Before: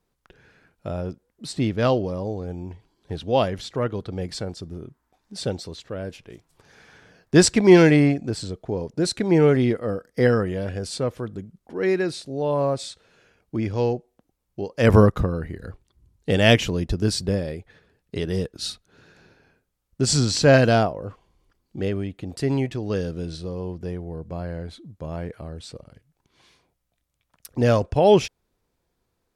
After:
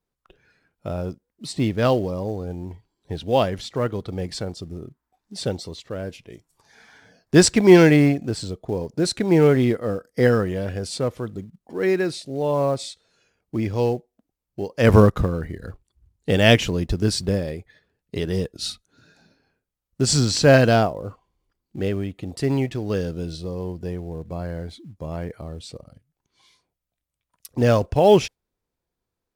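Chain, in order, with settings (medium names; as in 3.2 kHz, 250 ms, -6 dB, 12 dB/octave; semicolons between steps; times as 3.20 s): spectral noise reduction 10 dB; in parallel at -11 dB: short-mantissa float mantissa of 2-bit; on the sum: trim -1 dB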